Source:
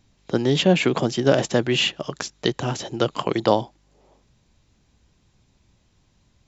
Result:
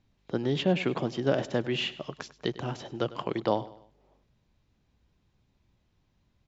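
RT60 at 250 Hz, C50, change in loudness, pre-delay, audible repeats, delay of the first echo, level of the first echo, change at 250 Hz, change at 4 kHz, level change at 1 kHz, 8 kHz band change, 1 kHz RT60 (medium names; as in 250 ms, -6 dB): no reverb, no reverb, -8.5 dB, no reverb, 3, 100 ms, -17.5 dB, -8.0 dB, -10.5 dB, -8.5 dB, no reading, no reverb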